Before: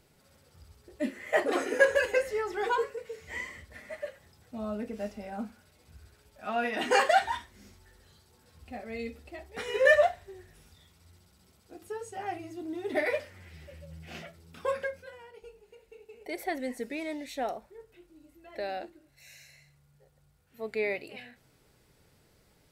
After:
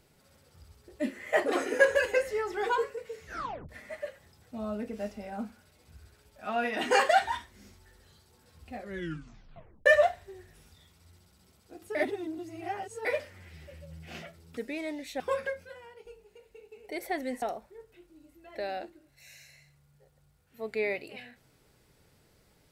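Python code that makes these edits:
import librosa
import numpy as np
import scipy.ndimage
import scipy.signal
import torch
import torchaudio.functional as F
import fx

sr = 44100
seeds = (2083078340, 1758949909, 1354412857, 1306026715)

y = fx.edit(x, sr, fx.tape_stop(start_s=3.24, length_s=0.45),
    fx.tape_stop(start_s=8.77, length_s=1.09),
    fx.reverse_span(start_s=11.95, length_s=1.1),
    fx.move(start_s=16.79, length_s=0.63, to_s=14.57), tone=tone)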